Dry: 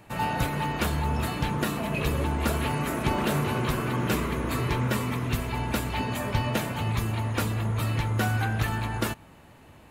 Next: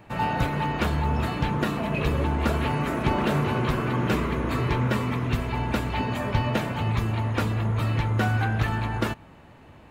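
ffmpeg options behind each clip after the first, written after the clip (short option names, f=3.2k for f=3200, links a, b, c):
-af "equalizer=f=12k:t=o:w=1.6:g=-13.5,volume=2.5dB"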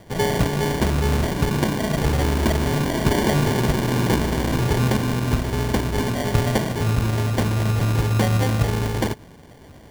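-af "acrusher=samples=34:mix=1:aa=0.000001,volume=4.5dB"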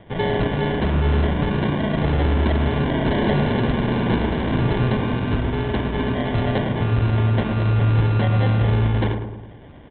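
-filter_complex "[0:a]aresample=8000,asoftclip=type=hard:threshold=-16dB,aresample=44100,asplit=2[a][b];[b]adelay=108,lowpass=f=1.3k:p=1,volume=-5.5dB,asplit=2[c][d];[d]adelay=108,lowpass=f=1.3k:p=1,volume=0.55,asplit=2[e][f];[f]adelay=108,lowpass=f=1.3k:p=1,volume=0.55,asplit=2[g][h];[h]adelay=108,lowpass=f=1.3k:p=1,volume=0.55,asplit=2[i][j];[j]adelay=108,lowpass=f=1.3k:p=1,volume=0.55,asplit=2[k][l];[l]adelay=108,lowpass=f=1.3k:p=1,volume=0.55,asplit=2[m][n];[n]adelay=108,lowpass=f=1.3k:p=1,volume=0.55[o];[a][c][e][g][i][k][m][o]amix=inputs=8:normalize=0"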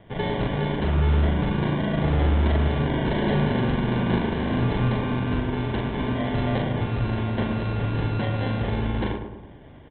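-filter_complex "[0:a]asplit=2[a][b];[b]adelay=40,volume=-3.5dB[c];[a][c]amix=inputs=2:normalize=0,volume=-5dB"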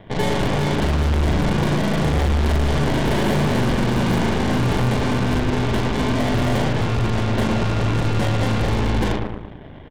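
-filter_complex "[0:a]volume=22.5dB,asoftclip=hard,volume=-22.5dB,asplit=5[a][b][c][d][e];[b]adelay=115,afreqshift=-56,volume=-14.5dB[f];[c]adelay=230,afreqshift=-112,volume=-20.9dB[g];[d]adelay=345,afreqshift=-168,volume=-27.3dB[h];[e]adelay=460,afreqshift=-224,volume=-33.6dB[i];[a][f][g][h][i]amix=inputs=5:normalize=0,aeval=exprs='0.119*(cos(1*acos(clip(val(0)/0.119,-1,1)))-cos(1*PI/2))+0.0211*(cos(8*acos(clip(val(0)/0.119,-1,1)))-cos(8*PI/2))':c=same,volume=6dB"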